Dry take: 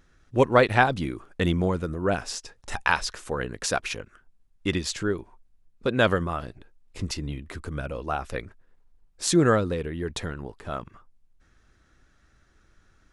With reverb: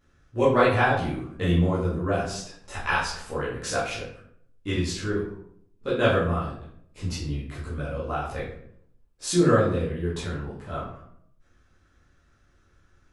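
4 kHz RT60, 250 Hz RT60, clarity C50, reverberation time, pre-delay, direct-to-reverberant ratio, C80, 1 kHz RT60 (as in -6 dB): 0.45 s, 0.85 s, 3.5 dB, 0.70 s, 11 ms, -9.5 dB, 7.5 dB, 0.60 s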